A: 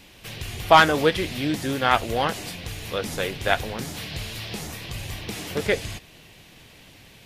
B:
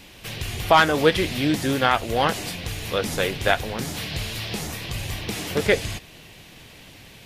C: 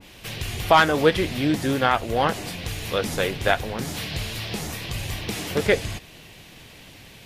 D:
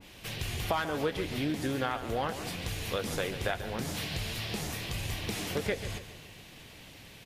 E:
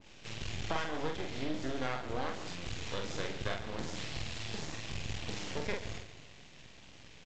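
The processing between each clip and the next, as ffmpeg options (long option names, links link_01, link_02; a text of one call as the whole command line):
ffmpeg -i in.wav -af "alimiter=limit=-8dB:level=0:latency=1:release=354,volume=3.5dB" out.wav
ffmpeg -i in.wav -af "adynamicequalizer=threshold=0.02:dfrequency=1900:dqfactor=0.7:tfrequency=1900:tqfactor=0.7:attack=5:release=100:ratio=0.375:range=2.5:mode=cutabove:tftype=highshelf" out.wav
ffmpeg -i in.wav -af "acompressor=threshold=-24dB:ratio=4,aecho=1:1:140|280|420|560|700:0.251|0.118|0.0555|0.0261|0.0123,volume=-5dB" out.wav
ffmpeg -i in.wav -filter_complex "[0:a]aresample=16000,aeval=exprs='max(val(0),0)':channel_layout=same,aresample=44100,asplit=2[link_01][link_02];[link_02]adelay=46,volume=-4dB[link_03];[link_01][link_03]amix=inputs=2:normalize=0,volume=-2.5dB" out.wav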